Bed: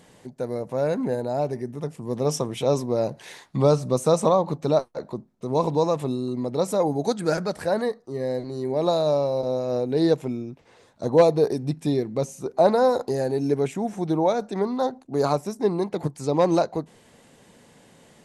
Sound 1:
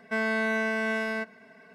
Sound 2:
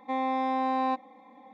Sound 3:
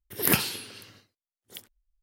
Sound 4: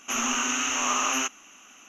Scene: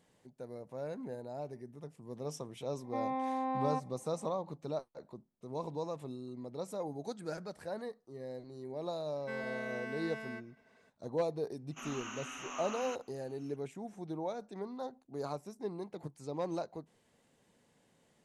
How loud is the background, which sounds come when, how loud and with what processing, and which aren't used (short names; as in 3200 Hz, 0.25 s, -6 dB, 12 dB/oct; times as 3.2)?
bed -17 dB
2.84 add 2 -6 dB + LPF 1300 Hz 6 dB/oct
9.16 add 1 -14.5 dB
11.68 add 4 -15.5 dB + high shelf 4500 Hz -11 dB
not used: 3